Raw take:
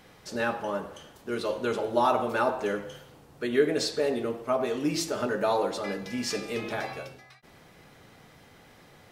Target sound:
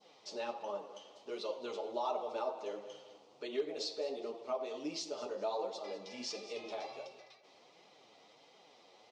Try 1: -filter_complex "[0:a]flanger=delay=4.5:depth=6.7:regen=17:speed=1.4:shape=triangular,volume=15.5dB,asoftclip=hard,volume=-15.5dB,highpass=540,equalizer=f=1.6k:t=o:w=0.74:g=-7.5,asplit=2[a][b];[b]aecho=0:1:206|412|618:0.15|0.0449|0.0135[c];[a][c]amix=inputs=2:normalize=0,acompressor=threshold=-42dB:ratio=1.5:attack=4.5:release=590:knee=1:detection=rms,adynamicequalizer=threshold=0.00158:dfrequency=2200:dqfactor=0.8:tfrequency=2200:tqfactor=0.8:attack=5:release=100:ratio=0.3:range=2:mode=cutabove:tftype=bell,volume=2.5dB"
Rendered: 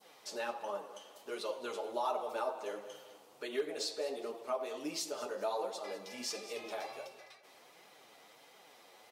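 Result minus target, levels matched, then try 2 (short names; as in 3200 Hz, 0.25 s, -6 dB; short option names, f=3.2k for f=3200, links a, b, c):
8000 Hz band +5.0 dB; 2000 Hz band +4.0 dB
-filter_complex "[0:a]flanger=delay=4.5:depth=6.7:regen=17:speed=1.4:shape=triangular,volume=15.5dB,asoftclip=hard,volume=-15.5dB,highpass=540,equalizer=f=1.6k:t=o:w=0.74:g=-18.5,asplit=2[a][b];[b]aecho=0:1:206|412|618:0.15|0.0449|0.0135[c];[a][c]amix=inputs=2:normalize=0,acompressor=threshold=-42dB:ratio=1.5:attack=4.5:release=590:knee=1:detection=rms,lowpass=f=5.8k:w=0.5412,lowpass=f=5.8k:w=1.3066,adynamicequalizer=threshold=0.00158:dfrequency=2200:dqfactor=0.8:tfrequency=2200:tqfactor=0.8:attack=5:release=100:ratio=0.3:range=2:mode=cutabove:tftype=bell,volume=2.5dB"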